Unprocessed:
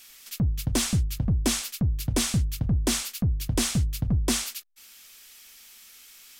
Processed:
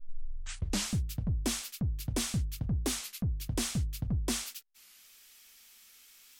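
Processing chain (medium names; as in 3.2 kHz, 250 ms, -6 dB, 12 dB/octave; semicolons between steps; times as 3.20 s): tape start-up on the opening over 0.92 s; warped record 33 1/3 rpm, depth 160 cents; trim -7.5 dB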